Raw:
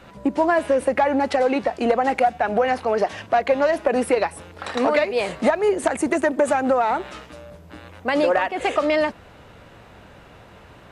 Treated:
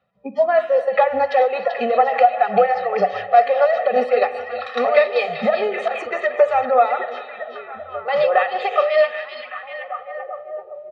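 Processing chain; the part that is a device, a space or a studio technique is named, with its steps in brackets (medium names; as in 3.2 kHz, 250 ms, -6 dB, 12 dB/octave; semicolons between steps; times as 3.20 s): spectral noise reduction 26 dB; comb 1.6 ms, depth 98%; combo amplifier with spring reverb and tremolo (spring tank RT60 1.6 s, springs 32/42 ms, chirp 35 ms, DRR 10 dB; tremolo 5 Hz, depth 51%; cabinet simulation 110–4300 Hz, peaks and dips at 180 Hz +5 dB, 280 Hz +3 dB, 770 Hz +4 dB); repeats whose band climbs or falls 387 ms, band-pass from 3.7 kHz, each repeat -0.7 oct, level -4 dB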